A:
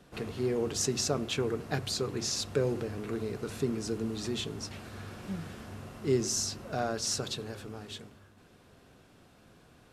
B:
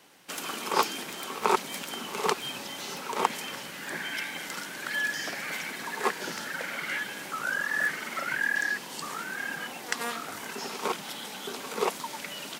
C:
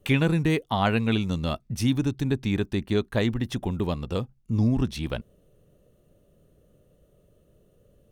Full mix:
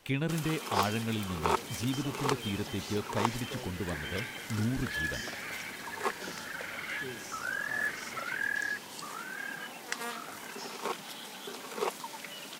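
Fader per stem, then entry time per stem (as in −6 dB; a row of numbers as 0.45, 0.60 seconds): −16.5, −5.0, −9.5 decibels; 0.95, 0.00, 0.00 seconds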